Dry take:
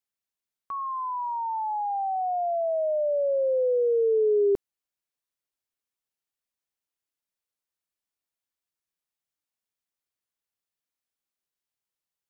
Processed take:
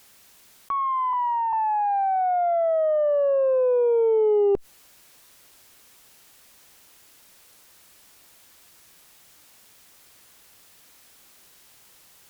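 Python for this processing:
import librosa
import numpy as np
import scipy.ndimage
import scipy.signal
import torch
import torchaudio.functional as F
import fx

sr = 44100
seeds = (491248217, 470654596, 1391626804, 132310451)

y = fx.ellip_bandstop(x, sr, low_hz=180.0, high_hz=930.0, order=3, stop_db=40, at=(1.13, 1.53))
y = fx.cheby_harmonics(y, sr, harmonics=(2, 3, 7), levels_db=(-19, -33, -41), full_scale_db=-17.5)
y = fx.env_flatten(y, sr, amount_pct=50)
y = y * librosa.db_to_amplitude(2.0)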